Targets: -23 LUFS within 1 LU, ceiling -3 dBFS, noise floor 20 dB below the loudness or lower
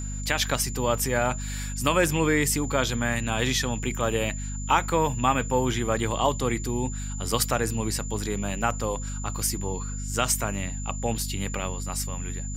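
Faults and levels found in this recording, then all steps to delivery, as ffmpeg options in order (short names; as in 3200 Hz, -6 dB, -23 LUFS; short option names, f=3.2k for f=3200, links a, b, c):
hum 50 Hz; harmonics up to 250 Hz; hum level -30 dBFS; steady tone 7100 Hz; tone level -38 dBFS; loudness -26.5 LUFS; peak -7.0 dBFS; loudness target -23.0 LUFS
-> -af "bandreject=f=50:t=h:w=6,bandreject=f=100:t=h:w=6,bandreject=f=150:t=h:w=6,bandreject=f=200:t=h:w=6,bandreject=f=250:t=h:w=6"
-af "bandreject=f=7.1k:w=30"
-af "volume=3.5dB"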